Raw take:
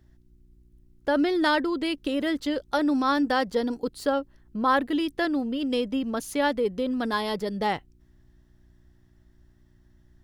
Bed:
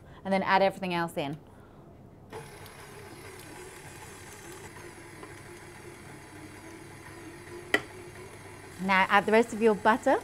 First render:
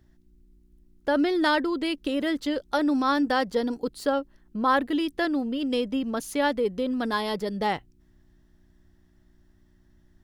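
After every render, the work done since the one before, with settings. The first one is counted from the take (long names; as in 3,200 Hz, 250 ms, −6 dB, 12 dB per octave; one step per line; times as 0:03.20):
hum removal 60 Hz, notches 2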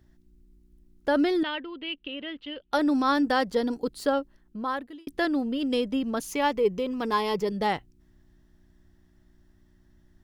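0:01.43–0:02.73: transistor ladder low-pass 3,100 Hz, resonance 75%
0:04.15–0:05.07: fade out
0:06.28–0:07.52: EQ curve with evenly spaced ripples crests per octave 0.76, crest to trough 8 dB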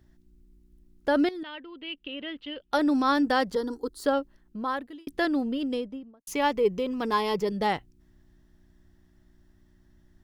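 0:01.29–0:02.25: fade in, from −15 dB
0:03.55–0:04.04: phaser with its sweep stopped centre 650 Hz, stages 6
0:05.41–0:06.27: fade out and dull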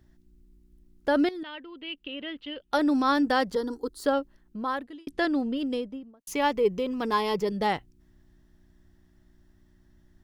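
0:04.84–0:05.57: low-pass filter 9,500 Hz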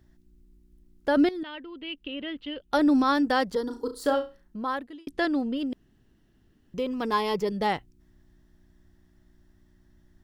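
0:01.17–0:03.04: low-shelf EQ 280 Hz +6.5 dB
0:03.65–0:04.57: flutter between parallel walls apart 5.9 metres, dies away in 0.28 s
0:05.73–0:06.74: fill with room tone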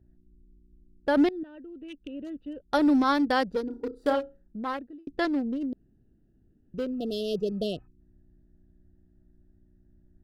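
adaptive Wiener filter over 41 samples
0:06.98–0:07.84: healed spectral selection 730–2,600 Hz before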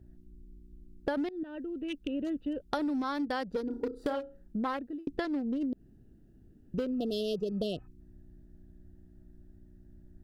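in parallel at −0.5 dB: brickwall limiter −20 dBFS, peak gain reduction 8.5 dB
on the sum: downward compressor 16 to 1, threshold −29 dBFS, peak gain reduction 16 dB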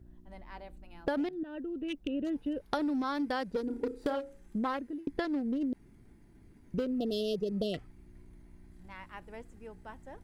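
mix in bed −25 dB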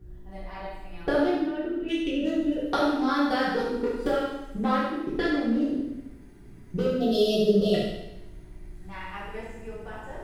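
flutter between parallel walls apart 12 metres, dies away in 0.62 s
coupled-rooms reverb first 0.76 s, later 2.2 s, from −28 dB, DRR −8.5 dB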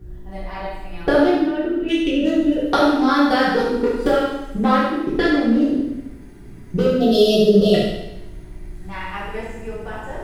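level +8.5 dB
brickwall limiter −3 dBFS, peak gain reduction 2 dB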